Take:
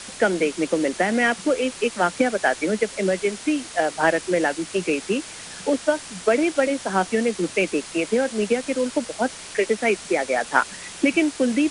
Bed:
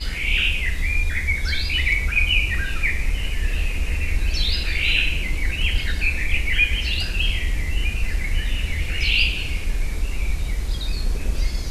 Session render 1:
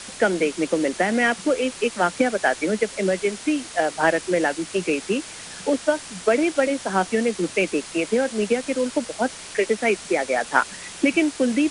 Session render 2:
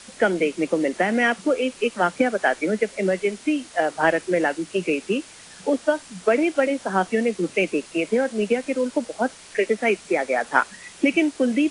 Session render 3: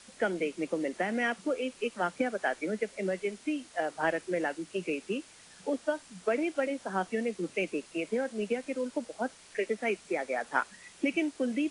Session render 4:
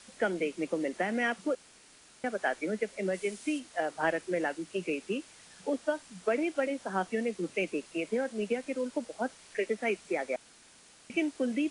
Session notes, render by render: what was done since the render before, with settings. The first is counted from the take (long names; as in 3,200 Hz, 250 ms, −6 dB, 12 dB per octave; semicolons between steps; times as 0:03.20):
no processing that can be heard
noise reduction from a noise print 7 dB
level −10 dB
0:01.55–0:02.24: fill with room tone; 0:03.13–0:03.58: high-shelf EQ 7,200 Hz → 4,500 Hz +11 dB; 0:10.36–0:11.10: fill with room tone